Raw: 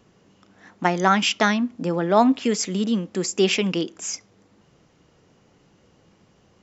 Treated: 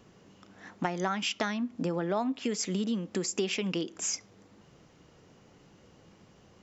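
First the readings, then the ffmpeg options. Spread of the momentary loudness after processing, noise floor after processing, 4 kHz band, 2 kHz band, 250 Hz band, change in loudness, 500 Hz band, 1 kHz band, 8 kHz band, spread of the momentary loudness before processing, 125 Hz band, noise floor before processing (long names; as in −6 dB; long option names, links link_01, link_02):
4 LU, −60 dBFS, −9.5 dB, −11.5 dB, −9.5 dB, −10.0 dB, −10.5 dB, −13.0 dB, can't be measured, 10 LU, −8.0 dB, −60 dBFS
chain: -af "acompressor=threshold=-28dB:ratio=6"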